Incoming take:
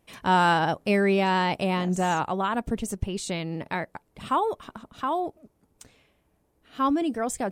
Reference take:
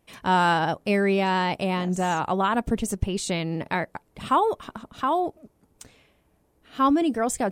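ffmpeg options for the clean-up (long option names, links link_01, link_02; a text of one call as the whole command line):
ffmpeg -i in.wav -af "asetnsamples=nb_out_samples=441:pad=0,asendcmd='2.23 volume volume 3.5dB',volume=0dB" out.wav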